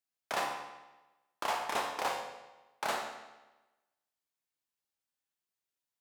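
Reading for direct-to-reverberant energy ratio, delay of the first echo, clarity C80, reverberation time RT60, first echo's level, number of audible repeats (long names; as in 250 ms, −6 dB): 2.0 dB, no echo audible, 7.0 dB, 1.1 s, no echo audible, no echo audible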